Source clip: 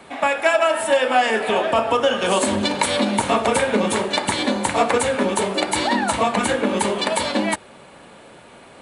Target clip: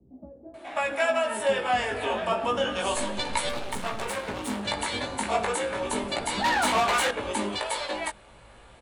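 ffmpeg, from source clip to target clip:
-filter_complex "[0:a]asubboost=boost=4.5:cutoff=70,acrossover=split=100|5300[s0][s1][s2];[s0]aeval=exprs='0.0178*sin(PI/2*1.78*val(0)/0.0178)':c=same[s3];[s3][s1][s2]amix=inputs=3:normalize=0,flanger=delay=15.5:depth=4.1:speed=0.32,asettb=1/sr,asplit=3[s4][s5][s6];[s4]atrim=end=2.954[s7];[s5]atrim=start=2.95:end=4.09,asetpts=PTS-STARTPTS,afade=t=in:d=0.004:c=qsin,afade=t=out:st=1.136:d=0.004:c=qsin,aeval=exprs='max(val(0),0)':c=same[s8];[s6]atrim=start=4.086[s9];[s7][s8]acrossfade=d=0.004:c1=hsin:c2=qsin[s10];[s10][s9]acrossfade=d=0.004:c1=qsin:c2=hsin,asettb=1/sr,asplit=3[s11][s12][s13];[s11]atrim=end=5.904[s14];[s12]atrim=start=5.9:end=6.57,asetpts=PTS-STARTPTS,afade=t=in:d=0.004:c=qsin,afade=t=out:st=0.666:d=0.004:c=qsin,asplit=2[s15][s16];[s16]highpass=f=720:p=1,volume=10,asoftclip=type=tanh:threshold=0.251[s17];[s15][s17]amix=inputs=2:normalize=0,lowpass=f=6500:p=1,volume=0.501[s18];[s13]atrim=start=6.566[s19];[s14][s18]acrossfade=d=0.004:c1=hsin:c2=qsin[s20];[s20][s19]acrossfade=d=0.004:c1=qsin:c2=hsin,acrossover=split=350[s21][s22];[s22]adelay=540[s23];[s21][s23]amix=inputs=2:normalize=0,volume=0.596"

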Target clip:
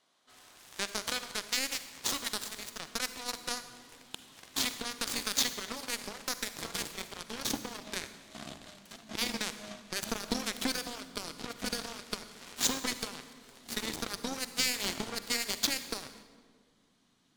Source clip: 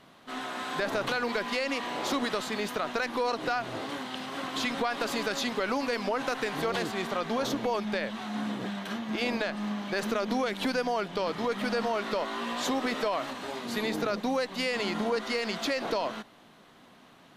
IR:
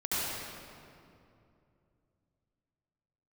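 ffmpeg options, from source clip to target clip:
-filter_complex "[0:a]asubboost=boost=9.5:cutoff=190,lowpass=8500,bass=f=250:g=-13,treble=f=4000:g=15,bandreject=f=2700:w=22,aeval=exprs='0.282*(cos(1*acos(clip(val(0)/0.282,-1,1)))-cos(1*PI/2))+0.02*(cos(3*acos(clip(val(0)/0.282,-1,1)))-cos(3*PI/2))+0.00447*(cos(5*acos(clip(val(0)/0.282,-1,1)))-cos(5*PI/2))+0.0398*(cos(7*acos(clip(val(0)/0.282,-1,1)))-cos(7*PI/2))':c=same,asplit=2[s0][s1];[1:a]atrim=start_sample=2205,asetrate=70560,aresample=44100,highshelf=f=9000:g=8.5[s2];[s1][s2]afir=irnorm=-1:irlink=0,volume=0.168[s3];[s0][s3]amix=inputs=2:normalize=0"

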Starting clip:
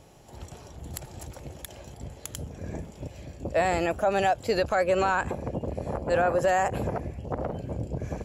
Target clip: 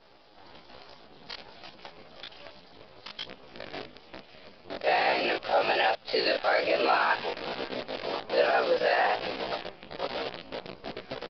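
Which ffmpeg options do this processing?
-filter_complex "[0:a]asplit=2[s0][s1];[s1]acompressor=threshold=0.0126:ratio=10,volume=0.841[s2];[s0][s2]amix=inputs=2:normalize=0,afftfilt=real='hypot(re,im)*cos(2*PI*random(0))':imag='hypot(re,im)*sin(2*PI*random(1))':win_size=512:overlap=0.75,highpass=360,aecho=1:1:409:0.1,flanger=delay=15:depth=6.2:speed=1.6,acrusher=bits=8:dc=4:mix=0:aa=0.000001,atempo=0.73,highshelf=f=4100:g=10,aresample=11025,aresample=44100,adynamicequalizer=threshold=0.00282:dfrequency=3000:dqfactor=0.9:tfrequency=3000:tqfactor=0.9:attack=5:release=100:ratio=0.375:range=2.5:mode=boostabove:tftype=bell,volume=2.11"

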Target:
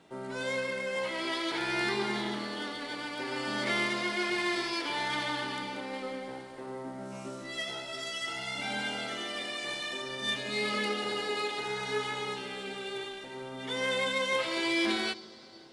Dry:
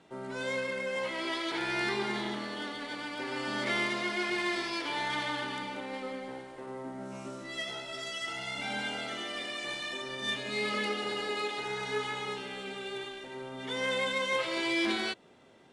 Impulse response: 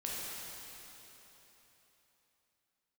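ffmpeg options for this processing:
-filter_complex "[0:a]crystalizer=i=0.5:c=0,asplit=2[s0][s1];[s1]highshelf=f=3600:t=q:w=3:g=13[s2];[1:a]atrim=start_sample=2205,lowpass=2700[s3];[s2][s3]afir=irnorm=-1:irlink=0,volume=0.141[s4];[s0][s4]amix=inputs=2:normalize=0"

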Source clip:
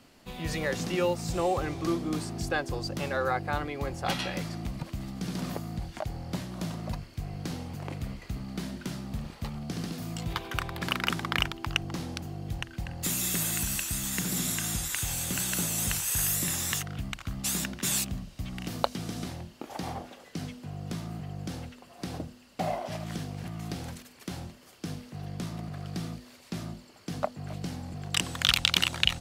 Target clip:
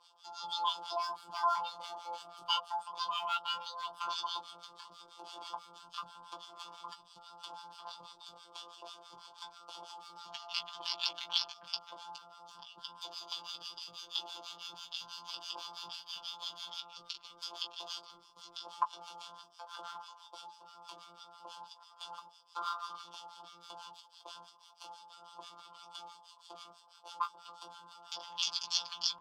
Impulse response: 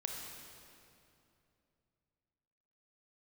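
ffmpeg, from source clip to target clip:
-filter_complex "[0:a]acrossover=split=490 5500:gain=0.224 1 0.224[s0][s1][s2];[s0][s1][s2]amix=inputs=3:normalize=0,bandreject=f=50:t=h:w=6,bandreject=f=100:t=h:w=6,bandreject=f=150:t=h:w=6,bandreject=f=200:t=h:w=6,bandreject=f=250:t=h:w=6,acrossover=split=120|2800[s3][s4][s5];[s5]acompressor=threshold=0.002:ratio=16[s6];[s3][s4][s6]amix=inputs=3:normalize=0,acrusher=bits=4:mode=log:mix=0:aa=0.000001,asplit=3[s7][s8][s9];[s7]bandpass=f=530:t=q:w=8,volume=1[s10];[s8]bandpass=f=1840:t=q:w=8,volume=0.501[s11];[s9]bandpass=f=2480:t=q:w=8,volume=0.355[s12];[s10][s11][s12]amix=inputs=3:normalize=0,asetrate=80880,aresample=44100,atempo=0.545254,afftfilt=real='hypot(re,im)*cos(PI*b)':imag='0':win_size=1024:overlap=0.75,acrossover=split=1100[s13][s14];[s13]aeval=exprs='val(0)*(1-1/2+1/2*cos(2*PI*6.1*n/s))':c=same[s15];[s14]aeval=exprs='val(0)*(1-1/2-1/2*cos(2*PI*6.1*n/s))':c=same[s16];[s15][s16]amix=inputs=2:normalize=0,asplit=2[s17][s18];[s18]adelay=16,volume=0.447[s19];[s17][s19]amix=inputs=2:normalize=0,volume=7.5"

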